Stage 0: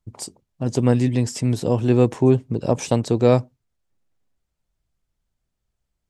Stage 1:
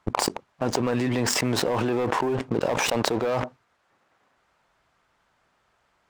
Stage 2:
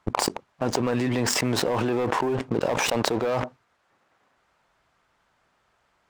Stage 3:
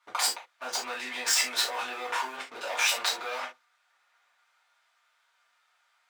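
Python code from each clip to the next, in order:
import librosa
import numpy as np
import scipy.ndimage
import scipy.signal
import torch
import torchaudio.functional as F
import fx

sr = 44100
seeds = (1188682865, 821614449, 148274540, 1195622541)

y1 = fx.bandpass_q(x, sr, hz=1200.0, q=1.2)
y1 = fx.leveller(y1, sr, passes=3)
y1 = fx.env_flatten(y1, sr, amount_pct=100)
y1 = F.gain(torch.from_numpy(y1), -8.5).numpy()
y2 = y1
y3 = scipy.signal.sosfilt(scipy.signal.butter(2, 1400.0, 'highpass', fs=sr, output='sos'), y2)
y3 = fx.rev_gated(y3, sr, seeds[0], gate_ms=100, shape='falling', drr_db=-7.5)
y3 = F.gain(torch.from_numpy(y3), -6.0).numpy()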